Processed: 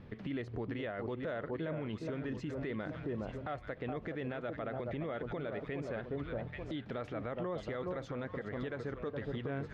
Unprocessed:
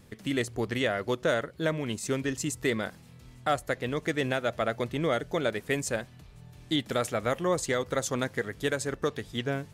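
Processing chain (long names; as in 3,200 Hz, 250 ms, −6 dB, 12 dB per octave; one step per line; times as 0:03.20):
on a send: delay that swaps between a low-pass and a high-pass 416 ms, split 1,100 Hz, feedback 51%, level −8 dB
on the sum: downward compressor, threshold −33 dBFS, peak gain reduction 11.5 dB
high-shelf EQ 6,500 Hz −8.5 dB
brickwall limiter −32.5 dBFS, peak gain reduction 10.5 dB
high-frequency loss of the air 310 metres
level +3.5 dB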